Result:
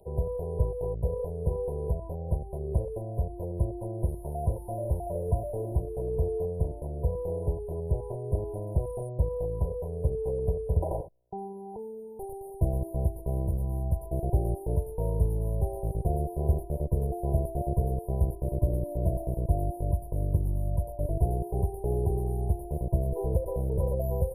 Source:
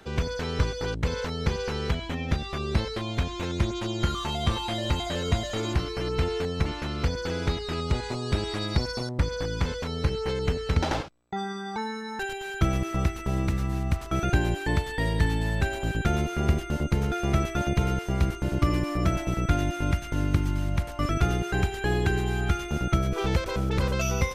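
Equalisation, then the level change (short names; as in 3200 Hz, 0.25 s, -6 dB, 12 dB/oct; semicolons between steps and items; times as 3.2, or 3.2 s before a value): brick-wall FIR band-stop 1000–9200 Hz; bell 3700 Hz +14 dB 2.2 oct; fixed phaser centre 1300 Hz, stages 8; 0.0 dB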